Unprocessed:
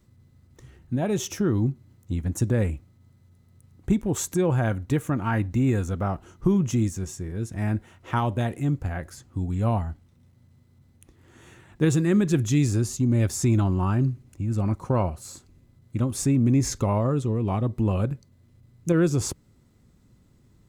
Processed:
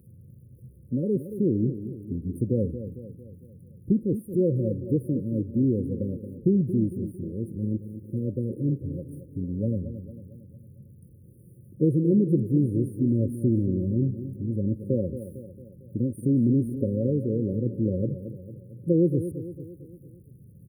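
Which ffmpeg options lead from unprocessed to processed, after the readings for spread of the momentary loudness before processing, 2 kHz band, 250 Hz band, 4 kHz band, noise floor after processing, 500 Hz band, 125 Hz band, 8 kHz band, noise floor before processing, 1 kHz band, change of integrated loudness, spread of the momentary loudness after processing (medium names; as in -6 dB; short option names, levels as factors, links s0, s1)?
11 LU, under -40 dB, +0.5 dB, under -40 dB, -51 dBFS, 0.0 dB, -3.0 dB, under -20 dB, -59 dBFS, under -40 dB, -1.5 dB, 15 LU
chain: -filter_complex "[0:a]aeval=exprs='val(0)+0.5*0.015*sgn(val(0))':c=same,afwtdn=0.0398,afftfilt=real='re*(1-between(b*sr/4096,580,8900))':imag='im*(1-between(b*sr/4096,580,8900))':win_size=4096:overlap=0.75,areverse,acompressor=mode=upward:threshold=0.00631:ratio=2.5,areverse,highpass=140,asplit=2[s0][s1];[s1]adelay=226,lowpass=f=3000:p=1,volume=0.282,asplit=2[s2][s3];[s3]adelay=226,lowpass=f=3000:p=1,volume=0.51,asplit=2[s4][s5];[s5]adelay=226,lowpass=f=3000:p=1,volume=0.51,asplit=2[s6][s7];[s7]adelay=226,lowpass=f=3000:p=1,volume=0.51,asplit=2[s8][s9];[s9]adelay=226,lowpass=f=3000:p=1,volume=0.51[s10];[s0][s2][s4][s6][s8][s10]amix=inputs=6:normalize=0"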